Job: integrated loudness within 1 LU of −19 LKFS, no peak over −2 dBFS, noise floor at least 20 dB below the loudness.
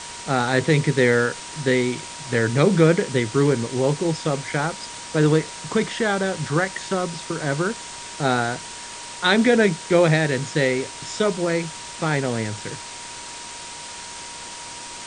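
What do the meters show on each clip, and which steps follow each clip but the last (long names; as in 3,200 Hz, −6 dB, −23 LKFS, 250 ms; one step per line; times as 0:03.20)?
interfering tone 950 Hz; level of the tone −41 dBFS; background noise floor −36 dBFS; target noise floor −42 dBFS; integrated loudness −21.5 LKFS; sample peak −3.5 dBFS; target loudness −19.0 LKFS
→ notch filter 950 Hz, Q 30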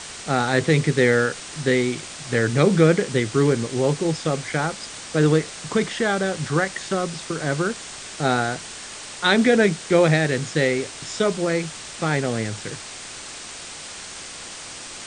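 interfering tone none found; background noise floor −37 dBFS; target noise floor −42 dBFS
→ broadband denoise 6 dB, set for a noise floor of −37 dBFS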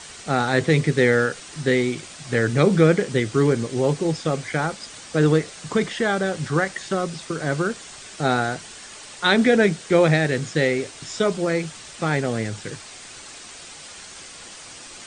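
background noise floor −41 dBFS; target noise floor −42 dBFS
→ broadband denoise 6 dB, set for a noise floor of −41 dBFS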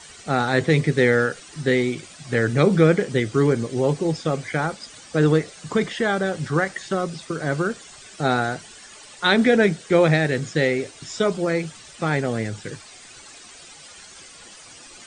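background noise floor −45 dBFS; integrated loudness −21.5 LKFS; sample peak −3.5 dBFS; target loudness −19.0 LKFS
→ level +2.5 dB
brickwall limiter −2 dBFS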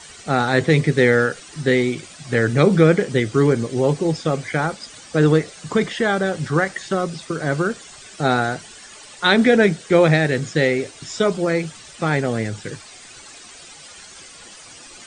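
integrated loudness −19.0 LKFS; sample peak −2.0 dBFS; background noise floor −42 dBFS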